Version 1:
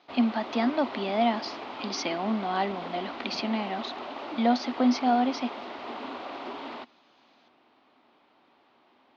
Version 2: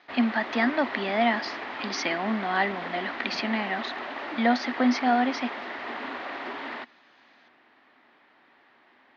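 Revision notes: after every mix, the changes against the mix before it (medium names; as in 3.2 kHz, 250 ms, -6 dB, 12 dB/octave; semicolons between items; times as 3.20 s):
master: add peaking EQ 1.8 kHz +14 dB 0.59 oct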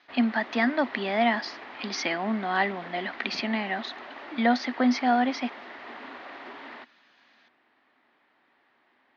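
background -7.0 dB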